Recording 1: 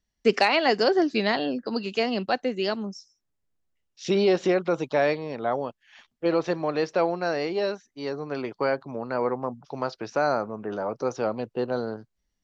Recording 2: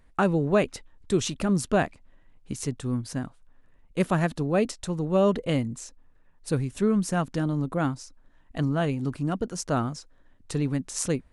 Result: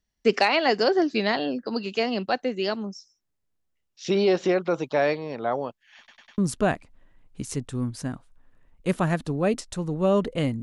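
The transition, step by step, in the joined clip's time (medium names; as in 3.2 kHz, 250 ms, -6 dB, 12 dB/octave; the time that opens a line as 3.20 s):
recording 1
5.98 s: stutter in place 0.10 s, 4 plays
6.38 s: go over to recording 2 from 1.49 s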